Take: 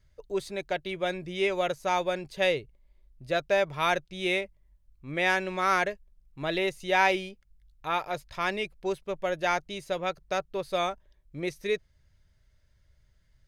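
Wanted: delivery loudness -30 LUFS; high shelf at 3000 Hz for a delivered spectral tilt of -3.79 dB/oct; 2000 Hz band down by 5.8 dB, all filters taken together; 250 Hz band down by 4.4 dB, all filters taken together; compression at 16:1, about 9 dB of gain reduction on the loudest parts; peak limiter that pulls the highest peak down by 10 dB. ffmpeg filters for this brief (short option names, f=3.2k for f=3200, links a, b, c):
-af "equalizer=f=250:t=o:g=-8.5,equalizer=f=2k:t=o:g=-4.5,highshelf=f=3k:g=-7.5,acompressor=threshold=-31dB:ratio=16,volume=13.5dB,alimiter=limit=-19.5dB:level=0:latency=1"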